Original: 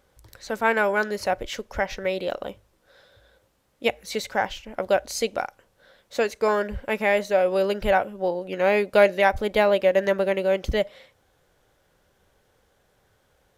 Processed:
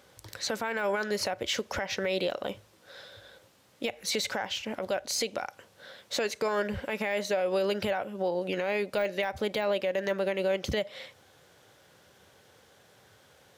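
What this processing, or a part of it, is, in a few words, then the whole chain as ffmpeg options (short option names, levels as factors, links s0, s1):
broadcast voice chain: -af "highpass=f=87:w=0.5412,highpass=f=87:w=1.3066,deesser=0.65,acompressor=threshold=0.0316:ratio=4,equalizer=f=4200:t=o:w=2.2:g=5,alimiter=level_in=1.12:limit=0.0631:level=0:latency=1:release=37,volume=0.891,volume=1.78"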